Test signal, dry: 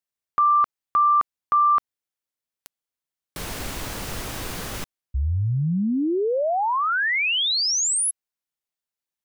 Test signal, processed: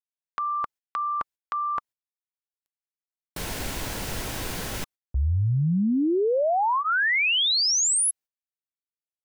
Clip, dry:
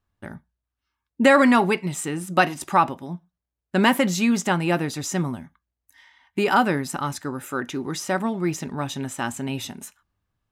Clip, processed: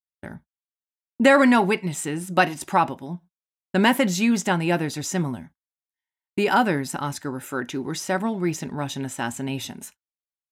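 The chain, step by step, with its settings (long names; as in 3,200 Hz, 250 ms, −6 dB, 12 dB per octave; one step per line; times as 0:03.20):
notch filter 1,200 Hz, Q 10
noise gate −45 dBFS, range −40 dB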